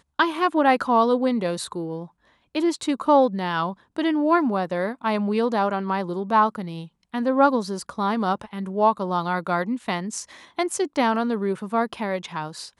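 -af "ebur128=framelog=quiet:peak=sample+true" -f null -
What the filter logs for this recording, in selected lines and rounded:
Integrated loudness:
  I:         -23.3 LUFS
  Threshold: -33.6 LUFS
Loudness range:
  LRA:         2.9 LU
  Threshold: -43.6 LUFS
  LRA low:   -25.4 LUFS
  LRA high:  -22.5 LUFS
Sample peak:
  Peak:       -5.4 dBFS
True peak:
  Peak:       -5.4 dBFS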